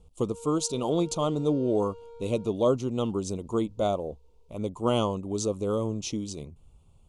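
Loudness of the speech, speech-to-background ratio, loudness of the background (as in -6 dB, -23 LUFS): -28.5 LUFS, 17.0 dB, -45.5 LUFS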